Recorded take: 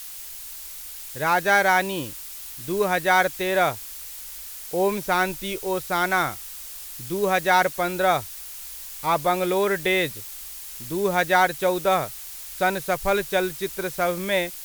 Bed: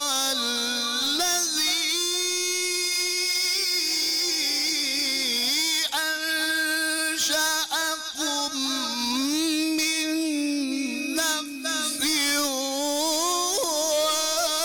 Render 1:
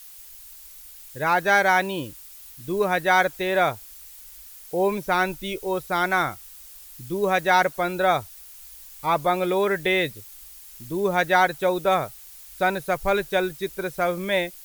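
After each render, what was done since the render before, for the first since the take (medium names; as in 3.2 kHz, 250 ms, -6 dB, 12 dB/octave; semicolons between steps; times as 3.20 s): noise reduction 9 dB, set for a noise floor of -38 dBFS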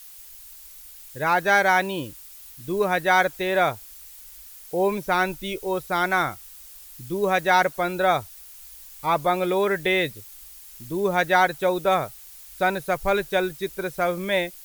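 no audible change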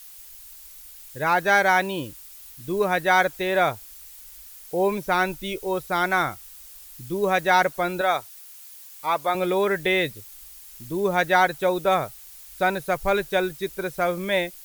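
8.01–9.35 s: high-pass 570 Hz 6 dB/octave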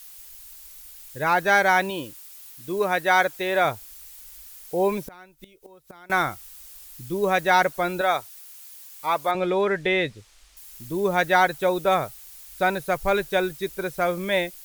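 1.90–3.65 s: bass shelf 140 Hz -11 dB; 5.05–6.10 s: inverted gate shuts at -22 dBFS, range -25 dB; 9.31–10.57 s: distance through air 86 m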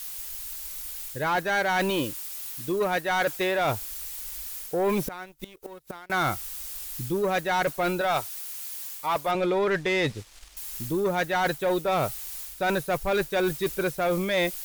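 reverse; compression 6:1, threshold -27 dBFS, peak gain reduction 13 dB; reverse; waveshaping leveller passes 2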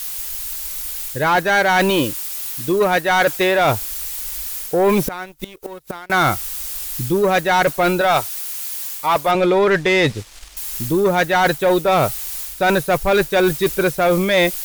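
trim +9.5 dB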